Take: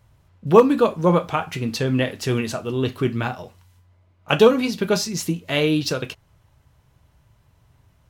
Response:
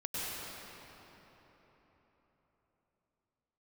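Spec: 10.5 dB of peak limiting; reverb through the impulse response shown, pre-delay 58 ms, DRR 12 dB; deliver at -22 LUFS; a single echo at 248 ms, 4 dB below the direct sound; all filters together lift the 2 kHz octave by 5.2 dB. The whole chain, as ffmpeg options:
-filter_complex "[0:a]equalizer=f=2000:t=o:g=7,alimiter=limit=0.299:level=0:latency=1,aecho=1:1:248:0.631,asplit=2[s0][s1];[1:a]atrim=start_sample=2205,adelay=58[s2];[s1][s2]afir=irnorm=-1:irlink=0,volume=0.141[s3];[s0][s3]amix=inputs=2:normalize=0,volume=0.891"

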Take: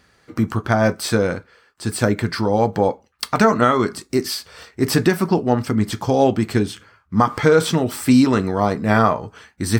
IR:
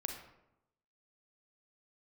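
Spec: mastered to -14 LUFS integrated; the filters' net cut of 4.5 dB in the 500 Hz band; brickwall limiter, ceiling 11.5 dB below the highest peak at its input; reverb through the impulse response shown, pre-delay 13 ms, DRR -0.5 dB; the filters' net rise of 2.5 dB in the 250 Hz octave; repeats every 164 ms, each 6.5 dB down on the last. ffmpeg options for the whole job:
-filter_complex "[0:a]equalizer=f=250:t=o:g=4.5,equalizer=f=500:t=o:g=-7,alimiter=limit=0.224:level=0:latency=1,aecho=1:1:164|328|492|656|820|984:0.473|0.222|0.105|0.0491|0.0231|0.0109,asplit=2[s0][s1];[1:a]atrim=start_sample=2205,adelay=13[s2];[s1][s2]afir=irnorm=-1:irlink=0,volume=1.06[s3];[s0][s3]amix=inputs=2:normalize=0,volume=1.88"

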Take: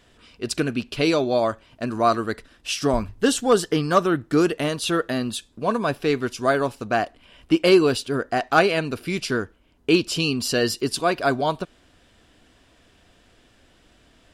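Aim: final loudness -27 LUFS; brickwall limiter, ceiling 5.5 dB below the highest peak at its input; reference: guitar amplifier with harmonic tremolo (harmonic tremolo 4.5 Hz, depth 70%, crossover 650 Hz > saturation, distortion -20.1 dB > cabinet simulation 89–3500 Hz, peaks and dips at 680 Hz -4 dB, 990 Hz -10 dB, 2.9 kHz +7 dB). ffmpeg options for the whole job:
-filter_complex "[0:a]alimiter=limit=0.251:level=0:latency=1,acrossover=split=650[s0][s1];[s0]aeval=exprs='val(0)*(1-0.7/2+0.7/2*cos(2*PI*4.5*n/s))':c=same[s2];[s1]aeval=exprs='val(0)*(1-0.7/2-0.7/2*cos(2*PI*4.5*n/s))':c=same[s3];[s2][s3]amix=inputs=2:normalize=0,asoftclip=threshold=0.158,highpass=89,equalizer=f=680:t=q:w=4:g=-4,equalizer=f=990:t=q:w=4:g=-10,equalizer=f=2900:t=q:w=4:g=7,lowpass=f=3500:w=0.5412,lowpass=f=3500:w=1.3066,volume=1.33"

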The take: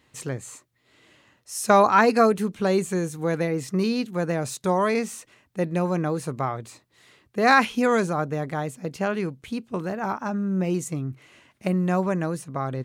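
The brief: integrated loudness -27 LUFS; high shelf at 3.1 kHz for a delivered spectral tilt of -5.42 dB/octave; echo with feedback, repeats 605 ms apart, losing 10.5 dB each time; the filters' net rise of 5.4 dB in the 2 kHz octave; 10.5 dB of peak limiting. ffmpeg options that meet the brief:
-af "equalizer=f=2000:t=o:g=8,highshelf=f=3100:g=-3,alimiter=limit=0.251:level=0:latency=1,aecho=1:1:605|1210|1815:0.299|0.0896|0.0269,volume=0.794"

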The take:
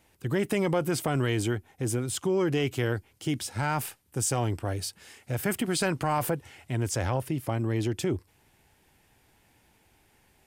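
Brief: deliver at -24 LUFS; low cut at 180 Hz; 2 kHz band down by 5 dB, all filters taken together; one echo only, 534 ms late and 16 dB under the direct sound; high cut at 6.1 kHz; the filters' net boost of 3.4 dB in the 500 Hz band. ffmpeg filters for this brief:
-af "highpass=180,lowpass=6100,equalizer=f=500:t=o:g=5,equalizer=f=2000:t=o:g=-7,aecho=1:1:534:0.158,volume=1.88"

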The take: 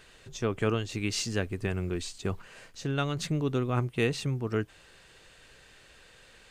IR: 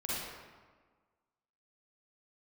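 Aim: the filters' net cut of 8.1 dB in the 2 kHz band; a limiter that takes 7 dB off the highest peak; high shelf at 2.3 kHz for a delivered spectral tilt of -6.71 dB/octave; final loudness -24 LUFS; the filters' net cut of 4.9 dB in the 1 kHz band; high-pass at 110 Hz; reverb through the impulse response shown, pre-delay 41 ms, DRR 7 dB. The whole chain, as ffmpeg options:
-filter_complex "[0:a]highpass=110,equalizer=f=1000:t=o:g=-3,equalizer=f=2000:t=o:g=-7,highshelf=f=2300:g=-5.5,alimiter=limit=0.0708:level=0:latency=1,asplit=2[s0][s1];[1:a]atrim=start_sample=2205,adelay=41[s2];[s1][s2]afir=irnorm=-1:irlink=0,volume=0.266[s3];[s0][s3]amix=inputs=2:normalize=0,volume=3.35"

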